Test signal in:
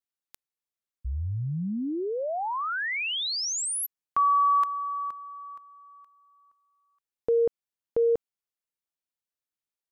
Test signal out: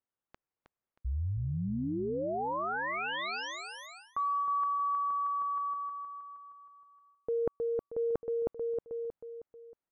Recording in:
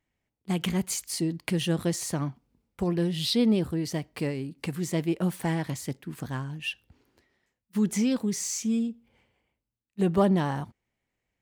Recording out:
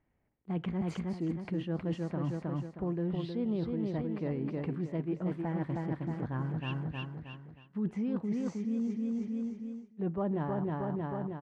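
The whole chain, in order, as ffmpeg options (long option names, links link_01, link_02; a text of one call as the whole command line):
ffmpeg -i in.wav -af "lowpass=1400,aecho=1:1:315|630|945|1260|1575:0.501|0.221|0.097|0.0427|0.0188,areverse,acompressor=threshold=-37dB:ratio=5:attack=11:release=386:knee=1:detection=peak,areverse,volume=5.5dB" out.wav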